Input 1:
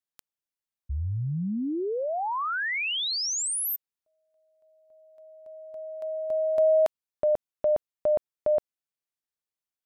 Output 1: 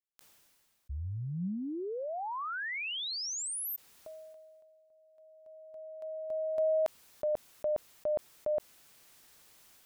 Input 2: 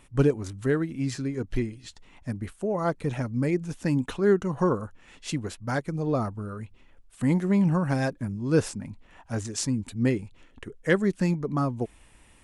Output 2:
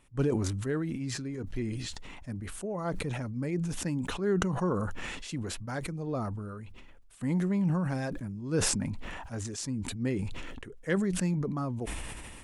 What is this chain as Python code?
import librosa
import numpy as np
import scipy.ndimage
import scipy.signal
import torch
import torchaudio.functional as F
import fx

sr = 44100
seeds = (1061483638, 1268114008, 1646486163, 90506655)

y = fx.dynamic_eq(x, sr, hz=180.0, q=7.3, threshold_db=-41.0, ratio=4.0, max_db=4)
y = fx.sustainer(y, sr, db_per_s=26.0)
y = F.gain(torch.from_numpy(y), -8.0).numpy()